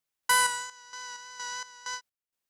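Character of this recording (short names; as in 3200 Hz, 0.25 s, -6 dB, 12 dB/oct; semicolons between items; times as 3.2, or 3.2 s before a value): random-step tremolo 4.3 Hz, depth 85%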